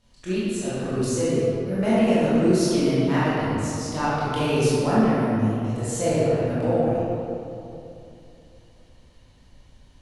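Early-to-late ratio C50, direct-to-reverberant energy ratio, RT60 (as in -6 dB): -6.0 dB, -11.0 dB, 2.8 s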